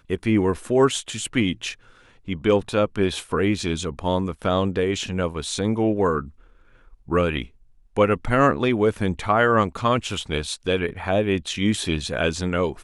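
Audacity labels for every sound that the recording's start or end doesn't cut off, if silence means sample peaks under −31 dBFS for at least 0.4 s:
2.280000	6.260000	sound
7.090000	7.450000	sound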